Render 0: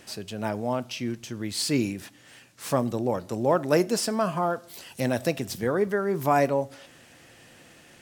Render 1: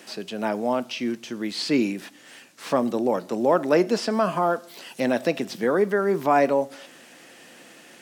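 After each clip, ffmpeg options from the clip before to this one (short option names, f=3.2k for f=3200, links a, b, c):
-filter_complex "[0:a]highpass=f=190:w=0.5412,highpass=f=190:w=1.3066,acrossover=split=4900[a][b];[b]acompressor=threshold=-52dB:ratio=4:attack=1:release=60[c];[a][c]amix=inputs=2:normalize=0,asplit=2[d][e];[e]alimiter=limit=-18dB:level=0:latency=1,volume=-3dB[f];[d][f]amix=inputs=2:normalize=0"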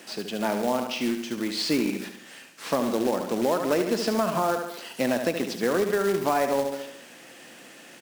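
-af "aecho=1:1:72|144|216|288|360|432:0.398|0.195|0.0956|0.0468|0.023|0.0112,acrusher=bits=3:mode=log:mix=0:aa=0.000001,acompressor=threshold=-20dB:ratio=5"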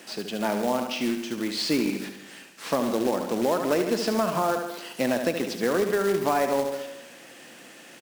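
-af "aecho=1:1:164|328|492|656:0.141|0.0593|0.0249|0.0105"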